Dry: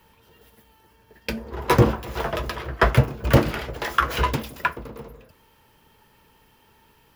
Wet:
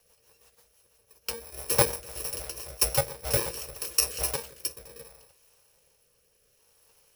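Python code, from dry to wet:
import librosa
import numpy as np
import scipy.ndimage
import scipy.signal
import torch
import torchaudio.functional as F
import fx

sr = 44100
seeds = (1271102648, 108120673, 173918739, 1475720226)

y = fx.bit_reversed(x, sr, seeds[0], block=64)
y = fx.rotary_switch(y, sr, hz=6.0, then_hz=0.65, switch_at_s=3.65)
y = fx.low_shelf_res(y, sr, hz=370.0, db=-10.0, q=3.0)
y = F.gain(torch.from_numpy(y), -2.5).numpy()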